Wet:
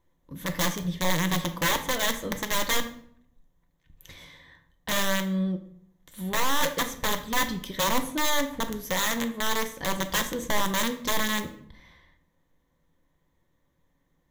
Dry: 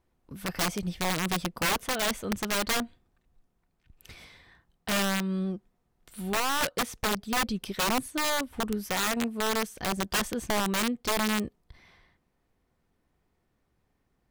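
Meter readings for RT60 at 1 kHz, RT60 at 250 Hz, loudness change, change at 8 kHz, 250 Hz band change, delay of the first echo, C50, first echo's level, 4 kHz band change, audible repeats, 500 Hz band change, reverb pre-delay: 0.55 s, 0.80 s, +1.5 dB, +2.5 dB, +0.5 dB, no echo audible, 12.0 dB, no echo audible, +2.5 dB, no echo audible, +1.0 dB, 5 ms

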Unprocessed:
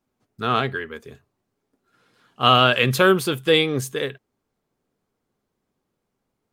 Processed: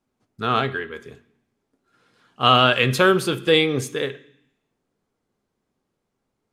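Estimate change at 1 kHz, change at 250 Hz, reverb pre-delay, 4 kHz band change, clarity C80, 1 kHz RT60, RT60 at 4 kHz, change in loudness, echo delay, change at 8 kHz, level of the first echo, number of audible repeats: 0.0 dB, +0.5 dB, 18 ms, 0.0 dB, 20.0 dB, 0.65 s, 0.80 s, 0.0 dB, no echo audible, −1.0 dB, no echo audible, no echo audible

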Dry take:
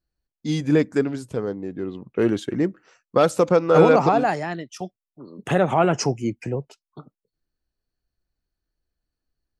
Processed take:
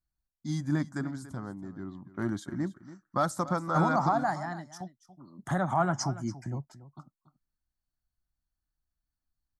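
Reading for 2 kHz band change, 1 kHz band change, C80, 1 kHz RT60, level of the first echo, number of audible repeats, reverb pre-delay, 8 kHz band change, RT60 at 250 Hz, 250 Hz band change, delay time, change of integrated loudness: −8.0 dB, −6.0 dB, no reverb audible, no reverb audible, −16.0 dB, 1, no reverb audible, −6.5 dB, no reverb audible, −9.5 dB, 284 ms, −10.0 dB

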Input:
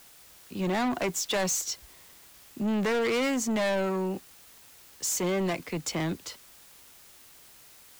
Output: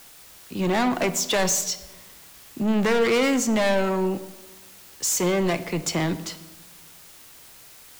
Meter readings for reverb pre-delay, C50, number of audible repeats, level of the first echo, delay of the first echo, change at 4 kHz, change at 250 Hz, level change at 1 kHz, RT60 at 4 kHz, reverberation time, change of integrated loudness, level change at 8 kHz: 6 ms, 14.0 dB, no echo audible, no echo audible, no echo audible, +6.0 dB, +5.5 dB, +6.0 dB, 0.85 s, 1.1 s, +5.5 dB, +5.5 dB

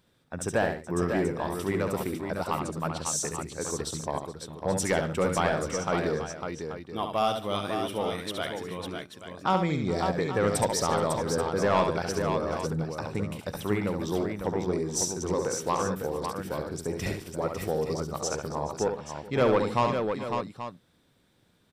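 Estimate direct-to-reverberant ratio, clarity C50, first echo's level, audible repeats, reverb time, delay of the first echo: no reverb audible, no reverb audible, −6.0 dB, 5, no reverb audible, 69 ms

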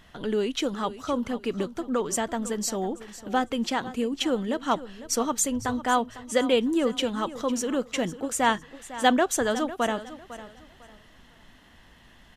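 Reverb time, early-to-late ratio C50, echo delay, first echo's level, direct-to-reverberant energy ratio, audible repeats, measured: no reverb audible, no reverb audible, 502 ms, −15.0 dB, no reverb audible, 2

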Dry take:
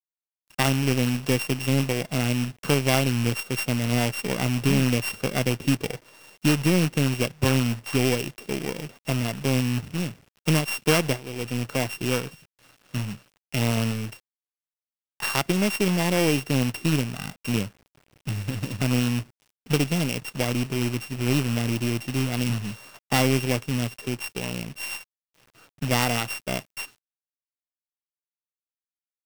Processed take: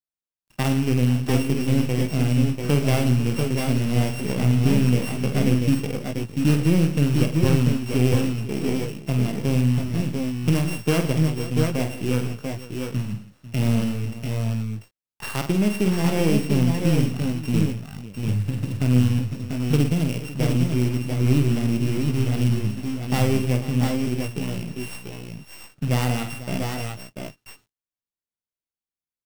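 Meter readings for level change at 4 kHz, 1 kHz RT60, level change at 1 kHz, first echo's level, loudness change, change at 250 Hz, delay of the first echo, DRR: −4.0 dB, no reverb audible, −2.0 dB, −7.0 dB, +2.5 dB, +4.0 dB, 48 ms, no reverb audible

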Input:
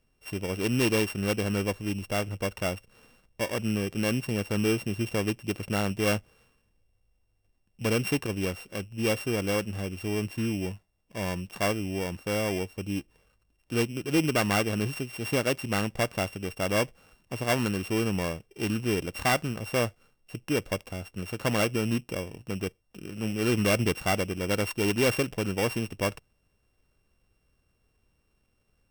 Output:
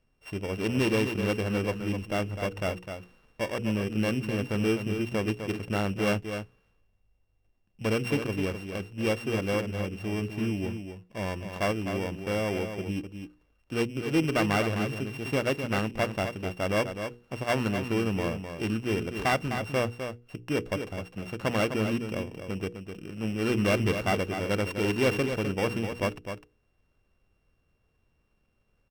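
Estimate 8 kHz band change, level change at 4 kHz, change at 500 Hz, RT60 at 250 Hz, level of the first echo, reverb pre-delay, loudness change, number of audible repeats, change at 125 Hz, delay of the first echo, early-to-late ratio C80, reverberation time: −7.0 dB, −2.5 dB, 0.0 dB, no reverb audible, −8.0 dB, no reverb audible, −0.5 dB, 1, 0.0 dB, 255 ms, no reverb audible, no reverb audible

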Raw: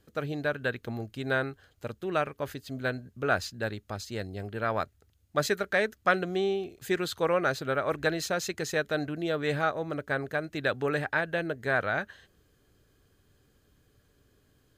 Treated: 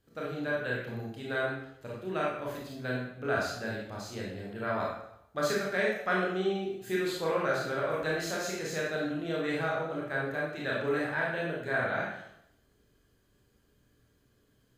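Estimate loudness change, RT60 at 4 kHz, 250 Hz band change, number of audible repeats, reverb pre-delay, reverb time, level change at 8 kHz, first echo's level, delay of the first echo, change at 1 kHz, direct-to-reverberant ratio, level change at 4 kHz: −2.0 dB, 0.65 s, −1.0 dB, no echo audible, 23 ms, 0.80 s, −2.5 dB, no echo audible, no echo audible, −3.0 dB, −5.0 dB, −3.0 dB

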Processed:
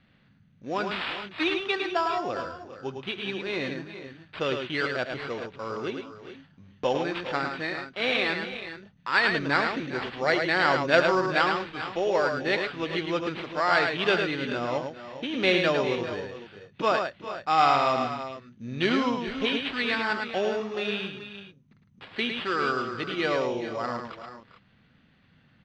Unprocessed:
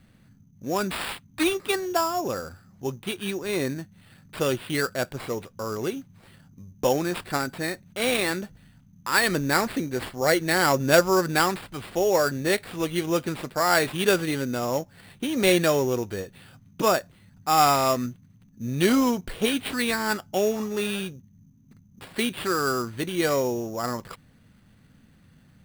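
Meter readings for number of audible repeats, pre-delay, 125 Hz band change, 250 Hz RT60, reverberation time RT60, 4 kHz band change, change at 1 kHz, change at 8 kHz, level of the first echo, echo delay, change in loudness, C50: 4, no reverb audible, −6.0 dB, no reverb audible, no reverb audible, −0.5 dB, −0.5 dB, −18.5 dB, −18.5 dB, 72 ms, −2.0 dB, no reverb audible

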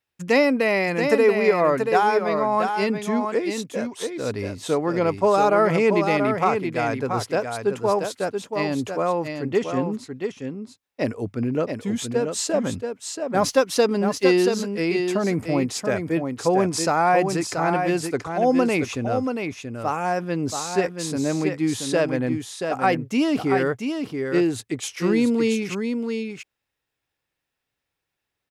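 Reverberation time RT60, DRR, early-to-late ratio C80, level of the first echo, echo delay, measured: no reverb audible, no reverb audible, no reverb audible, −6.0 dB, 681 ms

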